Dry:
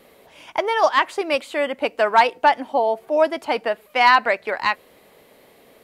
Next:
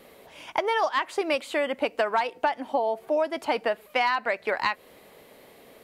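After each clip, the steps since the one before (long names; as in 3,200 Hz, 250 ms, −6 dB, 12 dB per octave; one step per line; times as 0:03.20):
downward compressor 10 to 1, threshold −21 dBFS, peak gain reduction 12.5 dB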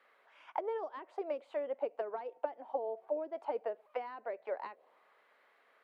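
low-shelf EQ 170 Hz −11 dB
envelope filter 370–1,500 Hz, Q 2.5, down, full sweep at −21 dBFS
level −5 dB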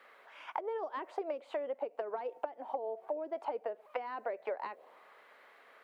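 downward compressor 10 to 1, threshold −42 dBFS, peak gain reduction 14 dB
level +8.5 dB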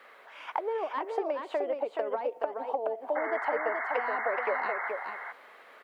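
sound drawn into the spectrogram noise, 0:03.15–0:04.90, 660–2,200 Hz −41 dBFS
single-tap delay 425 ms −5 dB
level +5.5 dB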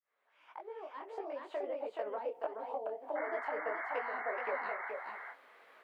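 fade in at the beginning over 1.75 s
micro pitch shift up and down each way 54 cents
level −3.5 dB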